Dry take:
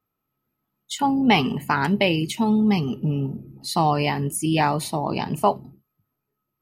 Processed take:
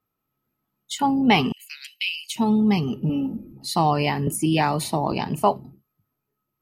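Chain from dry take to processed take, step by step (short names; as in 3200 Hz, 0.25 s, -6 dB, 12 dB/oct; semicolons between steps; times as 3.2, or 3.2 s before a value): 1.52–2.36 elliptic high-pass 2500 Hz, stop band 70 dB; 3.09–3.53 comb 3.7 ms, depth 83%; 4.27–5.12 three-band squash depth 70%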